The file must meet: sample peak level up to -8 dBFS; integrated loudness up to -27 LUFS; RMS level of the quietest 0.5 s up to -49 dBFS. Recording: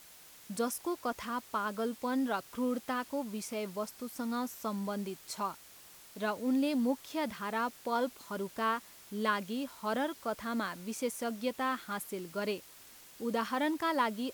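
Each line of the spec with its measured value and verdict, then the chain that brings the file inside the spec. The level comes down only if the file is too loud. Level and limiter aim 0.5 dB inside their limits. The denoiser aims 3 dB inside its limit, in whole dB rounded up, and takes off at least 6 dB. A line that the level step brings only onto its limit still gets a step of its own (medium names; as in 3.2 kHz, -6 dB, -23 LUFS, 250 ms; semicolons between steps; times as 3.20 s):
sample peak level -17.5 dBFS: pass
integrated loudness -35.5 LUFS: pass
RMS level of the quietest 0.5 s -55 dBFS: pass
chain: none needed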